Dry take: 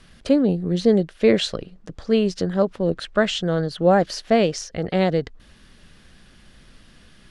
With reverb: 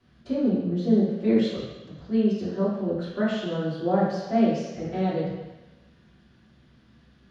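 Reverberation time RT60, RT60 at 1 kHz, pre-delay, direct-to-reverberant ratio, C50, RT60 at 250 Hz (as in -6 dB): 1.1 s, 1.2 s, 3 ms, -9.5 dB, 0.5 dB, 1.0 s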